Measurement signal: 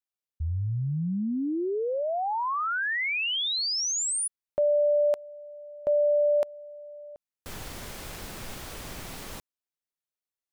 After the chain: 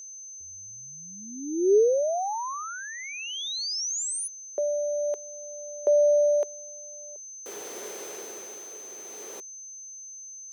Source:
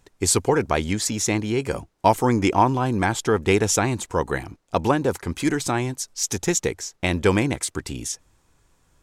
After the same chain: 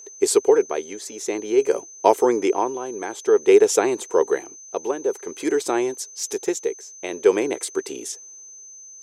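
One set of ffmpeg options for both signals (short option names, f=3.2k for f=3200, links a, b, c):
-af "tremolo=f=0.51:d=0.66,aeval=exprs='val(0)+0.0126*sin(2*PI*6200*n/s)':c=same,highpass=f=410:t=q:w=4.9,volume=-2dB"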